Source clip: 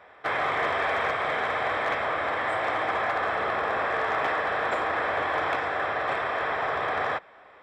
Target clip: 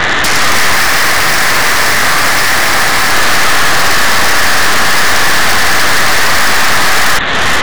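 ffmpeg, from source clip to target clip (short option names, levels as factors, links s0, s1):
-filter_complex "[0:a]highshelf=f=2600:t=q:w=3:g=-9,acompressor=threshold=0.00891:ratio=16,equalizer=f=460:t=o:w=1.6:g=-12.5,aeval=exprs='0.0211*sin(PI/2*3.98*val(0)/0.0211)':c=same,dynaudnorm=f=280:g=3:m=5.31,asoftclip=type=tanh:threshold=0.0531,asettb=1/sr,asplit=3[s0][s1][s2];[s0]atrim=end=0.694[s3];[s1]atrim=start=0.69:end=3.12,asetpts=PTS-STARTPTS,afade=t=in:d=0.004:c=qsin,afade=t=out:st=2.426:d=0.004:c=qsin,asplit=2[s4][s5];[s5]adelay=43,volume=0.473[s6];[s4][s6]amix=inputs=2:normalize=0,atrim=end_sample=107163[s7];[s2]atrim=start=3.116[s8];[s3][s7]acrossfade=d=0.004:c1=hsin:c2=qsin[s9];[s9][s8]acrossfade=d=0.004:c1=qsin:c2=hsin,aeval=exprs='0.0794*(cos(1*acos(clip(val(0)/0.0794,-1,1)))-cos(1*PI/2))+0.0398*(cos(4*acos(clip(val(0)/0.0794,-1,1)))-cos(4*PI/2))':c=same,alimiter=level_in=28.2:limit=0.891:release=50:level=0:latency=1,volume=0.891"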